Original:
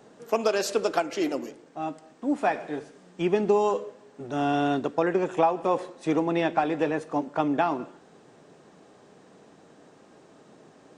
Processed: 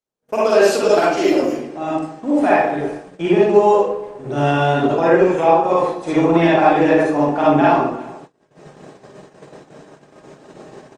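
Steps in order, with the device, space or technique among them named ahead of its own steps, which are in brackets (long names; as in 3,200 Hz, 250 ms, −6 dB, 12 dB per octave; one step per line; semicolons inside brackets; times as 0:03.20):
speakerphone in a meeting room (convolution reverb RT60 0.70 s, pre-delay 40 ms, DRR −8 dB; far-end echo of a speakerphone 360 ms, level −22 dB; automatic gain control gain up to 7.5 dB; noise gate −36 dBFS, range −43 dB; Opus 32 kbit/s 48,000 Hz)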